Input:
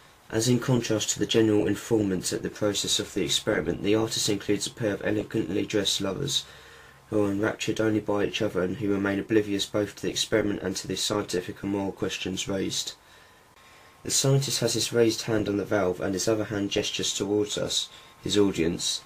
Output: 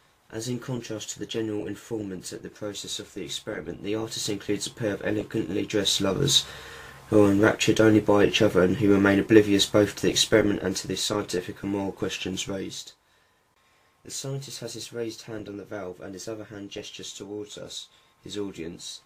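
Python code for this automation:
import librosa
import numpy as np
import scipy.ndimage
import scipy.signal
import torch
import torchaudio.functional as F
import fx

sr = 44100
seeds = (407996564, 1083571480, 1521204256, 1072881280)

y = fx.gain(x, sr, db=fx.line((3.59, -8.0), (4.74, -0.5), (5.7, -0.5), (6.27, 6.5), (10.0, 6.5), (11.06, 0.0), (12.42, 0.0), (12.89, -10.5)))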